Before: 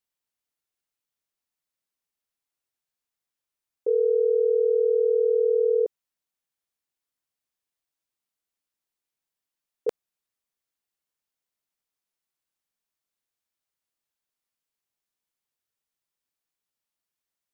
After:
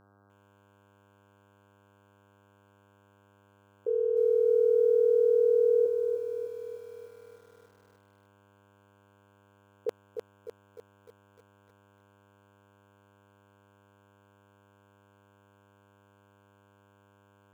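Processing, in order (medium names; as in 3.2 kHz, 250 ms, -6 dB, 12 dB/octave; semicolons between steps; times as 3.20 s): mains buzz 100 Hz, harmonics 16, -57 dBFS -3 dB/octave; bit-crushed delay 302 ms, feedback 55%, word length 9-bit, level -6 dB; trim -6 dB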